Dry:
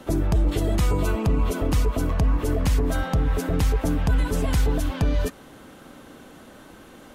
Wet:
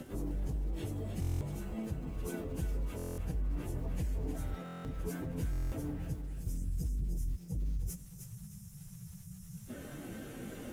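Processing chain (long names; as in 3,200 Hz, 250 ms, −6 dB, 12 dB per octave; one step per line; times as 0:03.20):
time-frequency box erased 0:04.07–0:06.46, 210–4,900 Hz
octave-band graphic EQ 125/1,000/4,000 Hz +6/−12/−8 dB
reversed playback
downward compressor 16 to 1, threshold −27 dBFS, peak gain reduction 15 dB
reversed playback
brickwall limiter −28.5 dBFS, peak gain reduction 7 dB
soft clipping −35.5 dBFS, distortion −13 dB
surface crackle 100 per second −50 dBFS
time stretch by phase vocoder 1.5×
on a send: feedback echo with a high-pass in the loop 308 ms, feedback 33%, high-pass 490 Hz, level −7 dB
on the sum: buffer that repeats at 0:01.20/0:02.97/0:04.64/0:05.51, samples 1,024, times 8
level +5.5 dB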